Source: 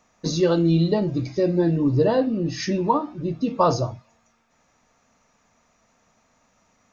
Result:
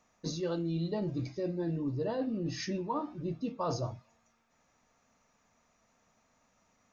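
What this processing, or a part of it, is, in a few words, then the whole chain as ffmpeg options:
compression on the reversed sound: -af "areverse,acompressor=threshold=0.0708:ratio=6,areverse,volume=0.422"

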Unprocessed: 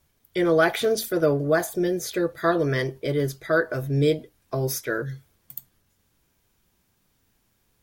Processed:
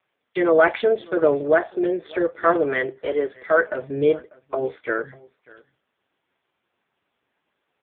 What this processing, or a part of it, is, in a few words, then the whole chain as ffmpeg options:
satellite phone: -filter_complex "[0:a]asplit=3[s0][s1][s2];[s0]afade=t=out:st=3.02:d=0.02[s3];[s1]highpass=f=290:w=0.5412,highpass=f=290:w=1.3066,afade=t=in:st=3.02:d=0.02,afade=t=out:st=3.68:d=0.02[s4];[s2]afade=t=in:st=3.68:d=0.02[s5];[s3][s4][s5]amix=inputs=3:normalize=0,highpass=390,lowpass=3200,aecho=1:1:594:0.0668,volume=2" -ar 8000 -c:a libopencore_amrnb -b:a 5150

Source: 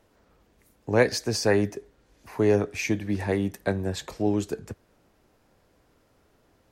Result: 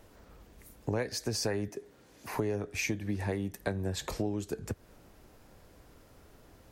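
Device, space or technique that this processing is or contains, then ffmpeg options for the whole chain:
ASMR close-microphone chain: -filter_complex "[0:a]asettb=1/sr,asplit=3[s0][s1][s2];[s0]atrim=end=1.684[s3];[s1]atrim=start=1.68:end=2.34,asetpts=PTS-STARTPTS,afade=t=in:d=0.004:c=qsin,afade=t=out:st=0.656:d=0.004:c=qsin,highpass=140[s4];[s2]atrim=start=2.336[s5];[s3][s4]acrossfade=d=0.004:c1=hsin:c2=qsin[s6];[s6][s5]acrossfade=d=0.004:c1=qsin:c2=hsin,lowshelf=f=100:g=7,acompressor=threshold=0.0178:ratio=6,highshelf=f=8300:g=6,volume=1.68"

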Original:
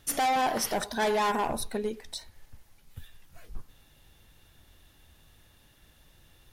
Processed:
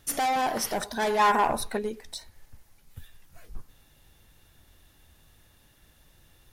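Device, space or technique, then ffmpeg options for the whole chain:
exciter from parts: -filter_complex "[0:a]asettb=1/sr,asplit=3[s0][s1][s2];[s0]atrim=end=1.194[s3];[s1]atrim=start=1.19:end=1.79,asetpts=PTS-STARTPTS,afade=t=in:d=0.004:c=qsin,afade=t=out:st=0.596:d=0.004:c=qsin,equalizer=f=1300:t=o:w=2.6:g=7.5[s4];[s2]atrim=start=1.786[s5];[s3][s4]acrossfade=d=0.004:c1=hsin:c2=qsin[s6];[s6][s5]acrossfade=d=0.004:c1=qsin:c2=hsin,asplit=2[s7][s8];[s8]highpass=f=2900:w=0.5412,highpass=f=2900:w=1.3066,asoftclip=type=tanh:threshold=0.0119,volume=0.251[s9];[s7][s9]amix=inputs=2:normalize=0"

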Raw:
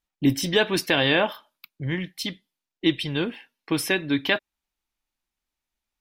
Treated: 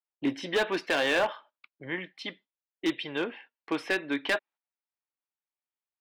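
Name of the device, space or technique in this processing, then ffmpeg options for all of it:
walkie-talkie: -af "highpass=420,lowpass=2300,asoftclip=type=hard:threshold=0.0944,agate=range=0.282:threshold=0.00224:ratio=16:detection=peak"

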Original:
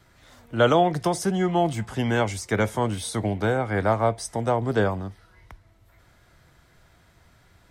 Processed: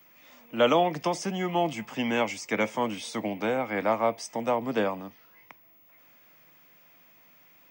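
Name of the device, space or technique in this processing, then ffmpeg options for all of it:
old television with a line whistle: -af "highpass=f=190:w=0.5412,highpass=f=190:w=1.3066,equalizer=f=190:t=q:w=4:g=-4,equalizer=f=390:t=q:w=4:g=-9,equalizer=f=720:t=q:w=4:g=-4,equalizer=f=1500:t=q:w=4:g=-8,equalizer=f=2500:t=q:w=4:g=8,equalizer=f=4000:t=q:w=4:g=-8,lowpass=f=6700:w=0.5412,lowpass=f=6700:w=1.3066,aeval=exprs='val(0)+0.00158*sin(2*PI*15625*n/s)':c=same"

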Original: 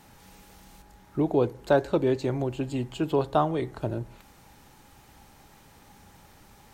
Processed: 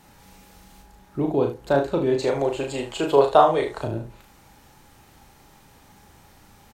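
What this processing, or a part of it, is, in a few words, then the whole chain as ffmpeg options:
slapback doubling: -filter_complex "[0:a]asettb=1/sr,asplit=3[s0][s1][s2];[s0]atrim=end=2.184[s3];[s1]atrim=start=2.18:end=3.84,asetpts=PTS-STARTPTS,afade=t=in:d=0.004:c=qsin,afade=t=out:st=1.656:d=0.004:c=qsin,equalizer=f=125:t=o:w=1:g=-5,equalizer=f=250:t=o:w=1:g=-6,equalizer=f=500:t=o:w=1:g=10,equalizer=f=1000:t=o:w=1:g=5,equalizer=f=2000:t=o:w=1:g=6,equalizer=f=4000:t=o:w=1:g=5,equalizer=f=8000:t=o:w=1:g=8[s4];[s2]atrim=start=3.836[s5];[s3][s4]acrossfade=d=0.004:c1=hsin:c2=qsin[s6];[s6][s5]acrossfade=d=0.004:c1=qsin:c2=hsin,asplit=3[s7][s8][s9];[s8]adelay=36,volume=0.596[s10];[s9]adelay=75,volume=0.316[s11];[s7][s10][s11]amix=inputs=3:normalize=0"

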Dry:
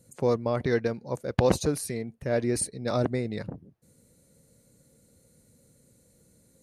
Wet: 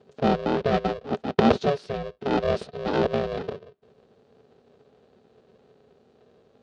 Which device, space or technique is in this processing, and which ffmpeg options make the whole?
ring modulator pedal into a guitar cabinet: -af "aeval=exprs='val(0)*sgn(sin(2*PI*280*n/s))':c=same,highpass=78,equalizer=f=240:t=q:w=4:g=8,equalizer=f=430:t=q:w=4:g=9,equalizer=f=610:t=q:w=4:g=6,equalizer=f=940:t=q:w=4:g=-4,equalizer=f=2100:t=q:w=4:g=-6,lowpass=f=4200:w=0.5412,lowpass=f=4200:w=1.3066"

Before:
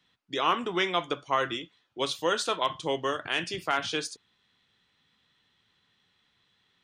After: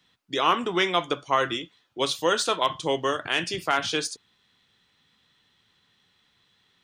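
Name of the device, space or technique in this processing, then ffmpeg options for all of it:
exciter from parts: -filter_complex "[0:a]asplit=2[s0][s1];[s1]highpass=3500,asoftclip=type=tanh:threshold=0.0299,volume=0.398[s2];[s0][s2]amix=inputs=2:normalize=0,volume=1.58"

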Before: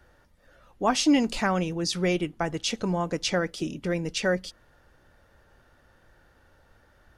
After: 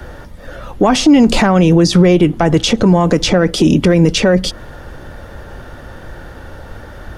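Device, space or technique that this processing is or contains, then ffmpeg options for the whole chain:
mastering chain: -filter_complex "[0:a]equalizer=f=3400:t=o:w=0.21:g=3,acrossover=split=130|1400[s0][s1][s2];[s0]acompressor=threshold=0.00794:ratio=4[s3];[s1]acompressor=threshold=0.0501:ratio=4[s4];[s2]acompressor=threshold=0.0126:ratio=4[s5];[s3][s4][s5]amix=inputs=3:normalize=0,acompressor=threshold=0.02:ratio=1.5,asoftclip=type=tanh:threshold=0.0944,tiltshelf=f=970:g=3.5,alimiter=level_in=21.1:limit=0.891:release=50:level=0:latency=1,volume=0.891"

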